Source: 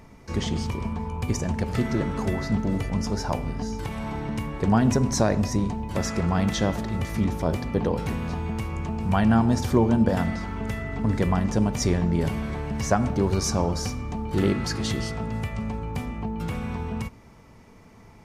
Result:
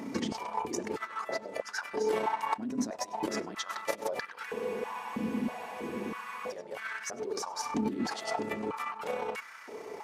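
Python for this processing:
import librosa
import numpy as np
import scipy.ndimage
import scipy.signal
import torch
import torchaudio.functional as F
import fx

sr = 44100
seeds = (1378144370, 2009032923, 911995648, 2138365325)

y = fx.dynamic_eq(x, sr, hz=840.0, q=2.4, threshold_db=-34.0, ratio=4.0, max_db=-3)
y = fx.over_compress(y, sr, threshold_db=-34.0, ratio=-1.0)
y = fx.stretch_grains(y, sr, factor=0.55, grain_ms=65.0)
y = y + 10.0 ** (-23.0 / 20.0) * np.pad(y, (int(99 * sr / 1000.0), 0))[:len(y)]
y = fx.spec_freeze(y, sr, seeds[0], at_s=4.48, hold_s=2.04)
y = fx.filter_held_highpass(y, sr, hz=3.1, low_hz=260.0, high_hz=1500.0)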